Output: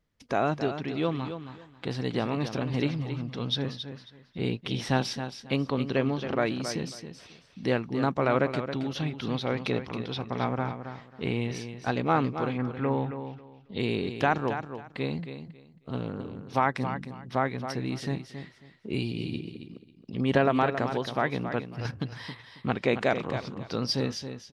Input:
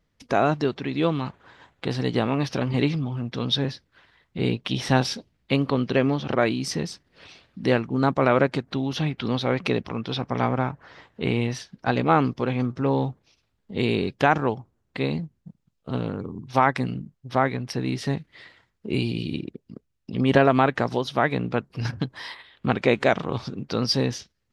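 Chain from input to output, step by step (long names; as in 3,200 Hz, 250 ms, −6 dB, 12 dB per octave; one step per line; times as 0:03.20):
0:12.57–0:13.78: low-pass with resonance 1,600 Hz → 4,100 Hz, resonance Q 3
on a send: repeating echo 272 ms, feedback 21%, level −9.5 dB
on the sum: level −5.5 dB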